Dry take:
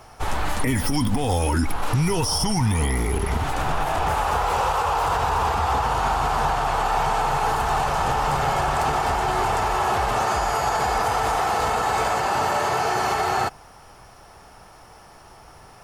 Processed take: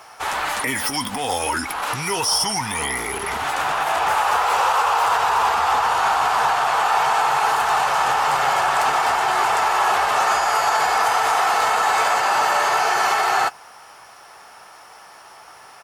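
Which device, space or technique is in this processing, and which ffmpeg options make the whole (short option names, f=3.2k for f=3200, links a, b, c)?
filter by subtraction: -filter_complex "[0:a]asplit=2[a][b];[b]lowpass=1.4k,volume=-1[c];[a][c]amix=inputs=2:normalize=0,asplit=2[d][e];[e]adelay=15,volume=-14dB[f];[d][f]amix=inputs=2:normalize=0,volume=4.5dB"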